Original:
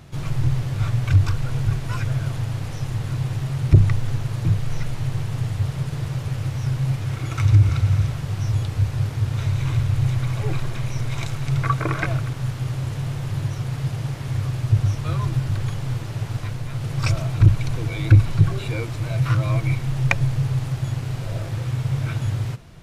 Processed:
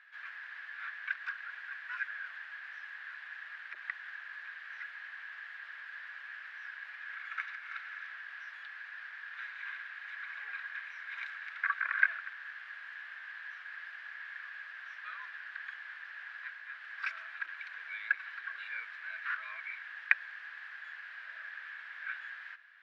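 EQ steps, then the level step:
four-pole ladder high-pass 1,600 Hz, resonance 85%
high-frequency loss of the air 360 metres
+4.0 dB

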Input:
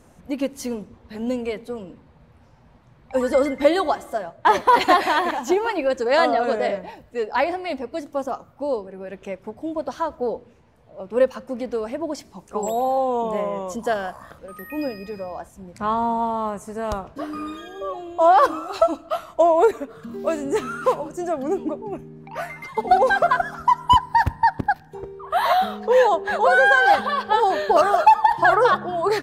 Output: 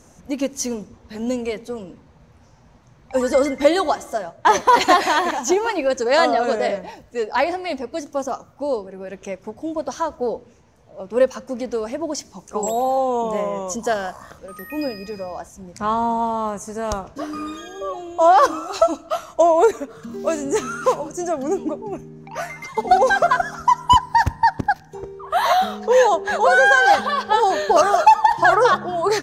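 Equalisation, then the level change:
parametric band 6,200 Hz +12 dB 0.55 octaves
+1.5 dB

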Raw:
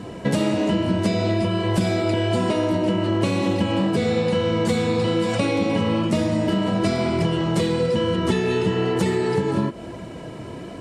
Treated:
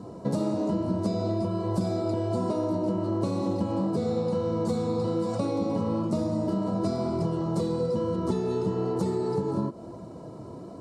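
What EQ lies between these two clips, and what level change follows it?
high-pass filter 76 Hz
flat-topped bell 2,300 Hz −15.5 dB 1.3 octaves
high-shelf EQ 3,900 Hz −6.5 dB
−6.0 dB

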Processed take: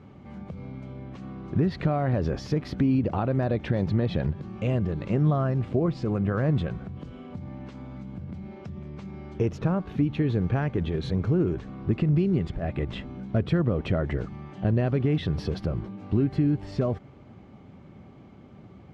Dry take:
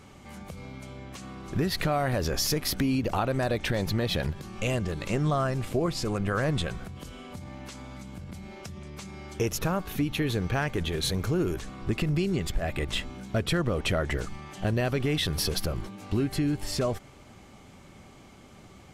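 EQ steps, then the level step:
band-pass filter 120–4,400 Hz
spectral tilt −3.5 dB per octave
−3.0 dB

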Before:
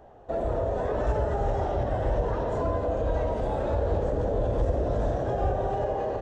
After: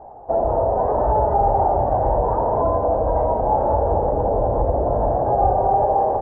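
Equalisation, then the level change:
low-pass with resonance 860 Hz, resonance Q 4.6
+3.5 dB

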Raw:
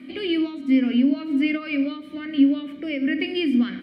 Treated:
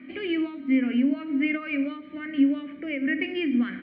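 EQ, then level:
low-pass with resonance 2,000 Hz, resonance Q 1.9
−4.0 dB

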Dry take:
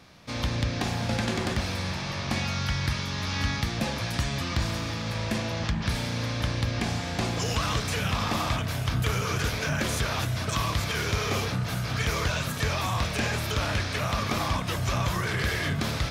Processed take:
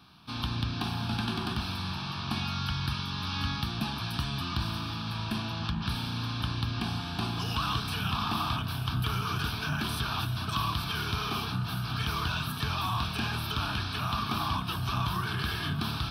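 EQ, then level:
low-shelf EQ 63 Hz −10.5 dB
mains-hum notches 50/100 Hz
phaser with its sweep stopped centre 2,000 Hz, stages 6
0.0 dB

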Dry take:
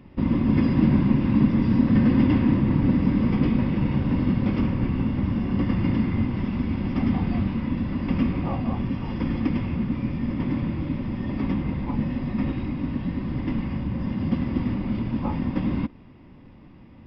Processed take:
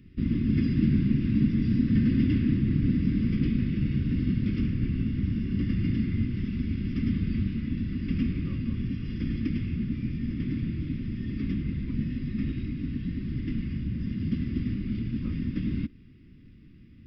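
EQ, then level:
Chebyshev band-stop filter 390–1,500 Hz, order 2
parametric band 780 Hz −12 dB 2.9 octaves
0.0 dB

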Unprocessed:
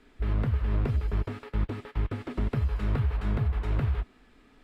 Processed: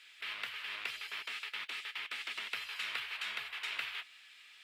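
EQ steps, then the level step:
high-pass with resonance 2,700 Hz, resonance Q 1.7
+8.5 dB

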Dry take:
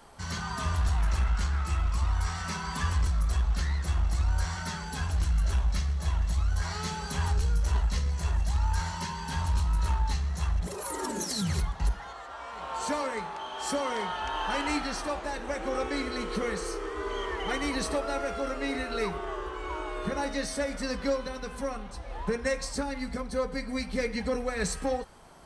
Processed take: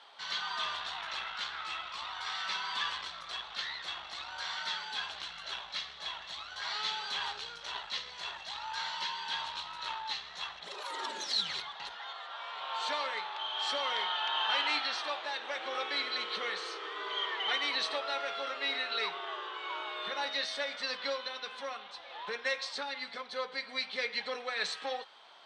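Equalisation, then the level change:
high-pass filter 730 Hz 12 dB per octave
low-pass with resonance 3,600 Hz, resonance Q 4.5
−2.0 dB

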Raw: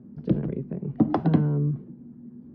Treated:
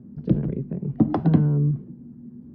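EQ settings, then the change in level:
low-shelf EQ 200 Hz +8.5 dB
−1.5 dB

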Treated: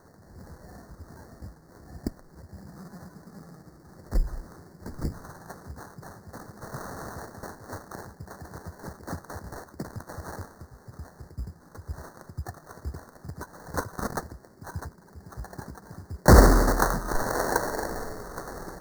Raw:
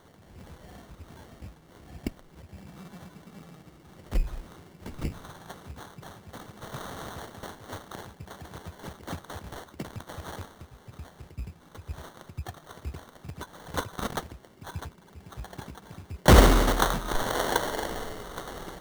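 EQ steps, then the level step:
elliptic band-stop filter 1,800–4,500 Hz, stop band 80 dB
+1.5 dB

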